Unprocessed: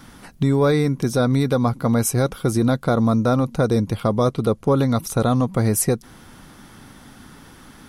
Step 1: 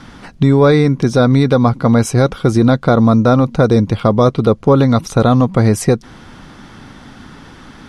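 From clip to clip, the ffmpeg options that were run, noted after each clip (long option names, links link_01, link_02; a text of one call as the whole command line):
ffmpeg -i in.wav -af "lowpass=5300,volume=7.5dB" out.wav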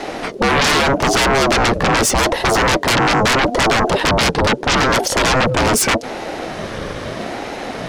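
ffmpeg -i in.wav -af "aeval=exprs='0.891*sin(PI/2*7.08*val(0)/0.891)':channel_layout=same,aeval=exprs='val(0)*sin(2*PI*430*n/s+430*0.3/0.8*sin(2*PI*0.8*n/s))':channel_layout=same,volume=-7dB" out.wav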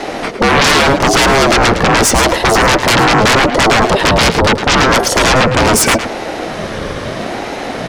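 ffmpeg -i in.wav -af "aecho=1:1:108:0.299,volume=4.5dB" out.wav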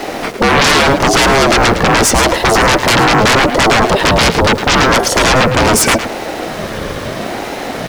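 ffmpeg -i in.wav -af "aeval=exprs='val(0)*gte(abs(val(0)),0.0398)':channel_layout=same" out.wav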